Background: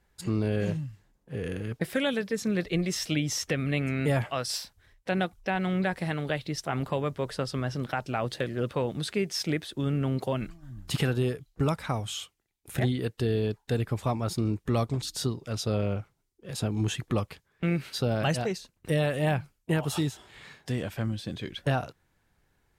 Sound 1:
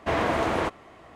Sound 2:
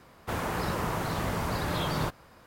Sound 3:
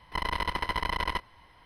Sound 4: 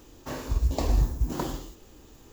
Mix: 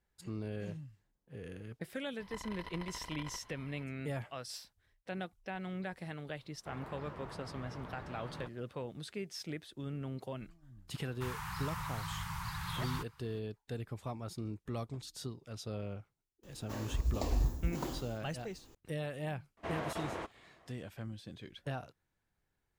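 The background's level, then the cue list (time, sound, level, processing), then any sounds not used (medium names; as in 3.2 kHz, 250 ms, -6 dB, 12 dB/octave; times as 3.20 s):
background -13 dB
2.19 s: add 3 -3 dB + compression 4:1, threshold -41 dBFS
6.38 s: add 2 -17 dB + low-pass 2.7 kHz
10.93 s: add 2 -7.5 dB + elliptic band-stop 160–930 Hz
16.43 s: add 4 -8 dB
19.57 s: add 1 -15 dB + crackling interface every 0.39 s, samples 1024, zero, from 0.36 s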